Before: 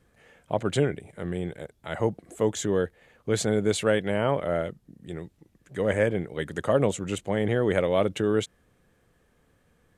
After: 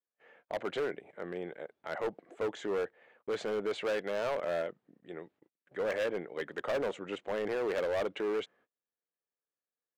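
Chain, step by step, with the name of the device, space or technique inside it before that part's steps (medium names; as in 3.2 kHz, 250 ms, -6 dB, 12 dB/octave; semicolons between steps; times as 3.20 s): walkie-talkie (band-pass 400–2300 Hz; hard clipper -26.5 dBFS, distortion -8 dB; gate -60 dBFS, range -30 dB); trim -2 dB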